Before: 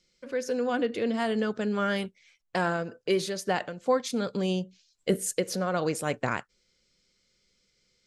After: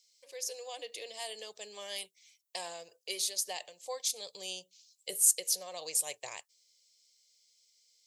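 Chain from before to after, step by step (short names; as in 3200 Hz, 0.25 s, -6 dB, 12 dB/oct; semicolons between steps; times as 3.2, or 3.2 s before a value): differentiator; fixed phaser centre 590 Hz, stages 4; gain +7.5 dB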